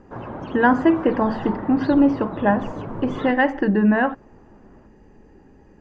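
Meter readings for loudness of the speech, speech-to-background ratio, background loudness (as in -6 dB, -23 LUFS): -20.0 LUFS, 12.5 dB, -32.5 LUFS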